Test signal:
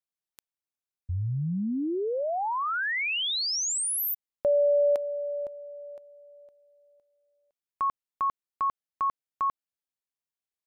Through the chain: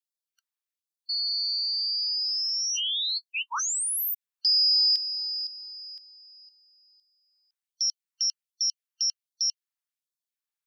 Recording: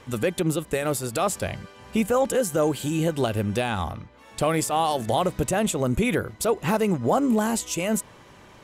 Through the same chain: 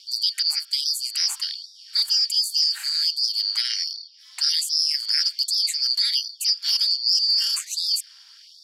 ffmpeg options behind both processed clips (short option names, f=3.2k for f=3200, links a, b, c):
-af "afftfilt=real='real(if(lt(b,272),68*(eq(floor(b/68),0)*3+eq(floor(b/68),1)*2+eq(floor(b/68),2)*1+eq(floor(b/68),3)*0)+mod(b,68),b),0)':imag='imag(if(lt(b,272),68*(eq(floor(b/68),0)*3+eq(floor(b/68),1)*2+eq(floor(b/68),2)*1+eq(floor(b/68),3)*0)+mod(b,68),b),0)':win_size=2048:overlap=0.75,aeval=exprs='val(0)*sin(2*PI*130*n/s)':c=same,afftfilt=real='re*gte(b*sr/1024,720*pow(3500/720,0.5+0.5*sin(2*PI*1.3*pts/sr)))':imag='im*gte(b*sr/1024,720*pow(3500/720,0.5+0.5*sin(2*PI*1.3*pts/sr)))':win_size=1024:overlap=0.75,volume=3.5dB"